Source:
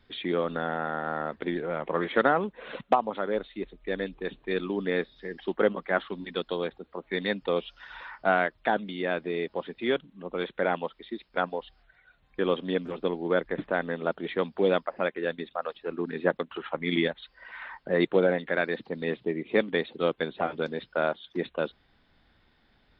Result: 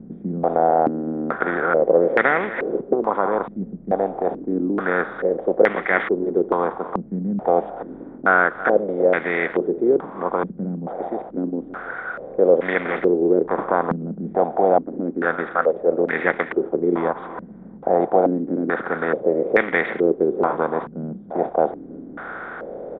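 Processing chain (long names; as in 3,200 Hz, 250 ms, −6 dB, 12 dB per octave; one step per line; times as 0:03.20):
compressor on every frequency bin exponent 0.4
single-tap delay 329 ms −15.5 dB
low-pass on a step sequencer 2.3 Hz 200–2,000 Hz
level −3 dB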